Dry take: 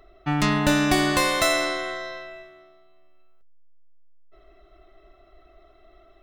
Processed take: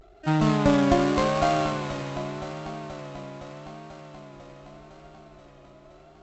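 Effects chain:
running median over 25 samples
high-pass filter 41 Hz 12 dB per octave
pitch-shifted copies added +12 semitones −15 dB
on a send: delay that swaps between a low-pass and a high-pass 249 ms, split 830 Hz, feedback 85%, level −10 dB
on the sum: pitch vibrato 0.84 Hz 91 cents
linear-phase brick-wall low-pass 7,900 Hz
level +2.5 dB

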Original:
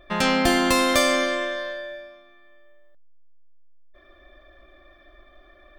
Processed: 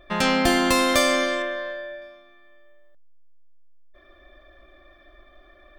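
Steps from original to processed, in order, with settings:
0:01.42–0:02.02: bass and treble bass −1 dB, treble −12 dB

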